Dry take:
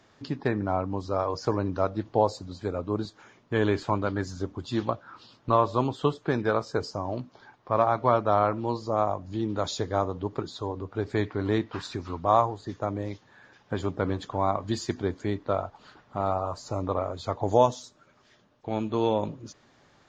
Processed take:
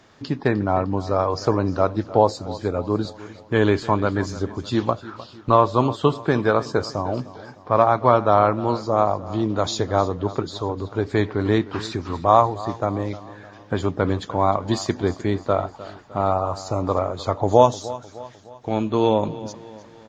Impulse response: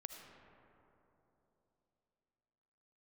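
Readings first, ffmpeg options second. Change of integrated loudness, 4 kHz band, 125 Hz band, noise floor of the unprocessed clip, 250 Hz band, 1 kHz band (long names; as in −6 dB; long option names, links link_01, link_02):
+6.5 dB, +6.5 dB, +6.5 dB, −61 dBFS, +6.5 dB, +6.5 dB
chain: -af "aecho=1:1:305|610|915|1220:0.141|0.0678|0.0325|0.0156,volume=6.5dB"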